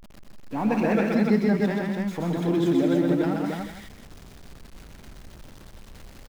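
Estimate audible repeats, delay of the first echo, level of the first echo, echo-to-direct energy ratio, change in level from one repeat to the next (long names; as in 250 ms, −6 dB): 4, 126 ms, −3.0 dB, 0.5 dB, repeats not evenly spaced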